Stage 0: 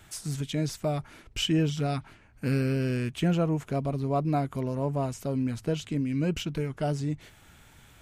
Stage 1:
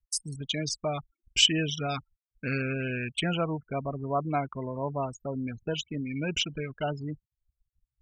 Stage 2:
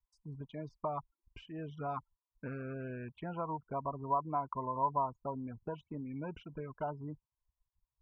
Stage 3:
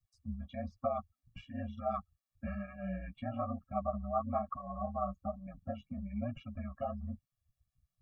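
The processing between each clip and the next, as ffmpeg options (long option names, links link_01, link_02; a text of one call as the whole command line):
ffmpeg -i in.wav -af "afftfilt=real='re*gte(hypot(re,im),0.0158)':imag='im*gte(hypot(re,im),0.0158)':win_size=1024:overlap=0.75,anlmdn=0.251,tiltshelf=frequency=880:gain=-8.5,volume=2dB" out.wav
ffmpeg -i in.wav -af "acompressor=threshold=-31dB:ratio=5,lowpass=frequency=1000:width_type=q:width=10,volume=-7dB" out.wav
ffmpeg -i in.wav -af "aeval=exprs='val(0)*sin(2*PI*64*n/s)':channel_layout=same,flanger=delay=7.3:depth=9.2:regen=-10:speed=1.1:shape=sinusoidal,afftfilt=real='re*eq(mod(floor(b*sr/1024/270),2),0)':imag='im*eq(mod(floor(b*sr/1024/270),2),0)':win_size=1024:overlap=0.75,volume=10.5dB" out.wav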